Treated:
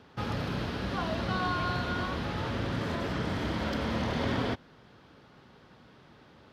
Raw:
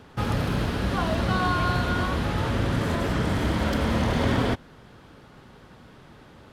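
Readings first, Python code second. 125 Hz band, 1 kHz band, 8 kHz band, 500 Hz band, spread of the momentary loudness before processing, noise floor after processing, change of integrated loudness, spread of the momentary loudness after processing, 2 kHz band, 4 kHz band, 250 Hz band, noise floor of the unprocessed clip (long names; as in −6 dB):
−8.5 dB, −6.0 dB, −9.5 dB, −6.0 dB, 3 LU, −57 dBFS, −7.0 dB, 4 LU, −5.5 dB, −4.5 dB, −6.5 dB, −50 dBFS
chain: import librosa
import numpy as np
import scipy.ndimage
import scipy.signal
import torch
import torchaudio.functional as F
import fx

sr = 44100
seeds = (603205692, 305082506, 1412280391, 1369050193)

y = fx.highpass(x, sr, hz=93.0, slope=6)
y = fx.high_shelf_res(y, sr, hz=6500.0, db=-6.5, q=1.5)
y = y * 10.0 ** (-6.0 / 20.0)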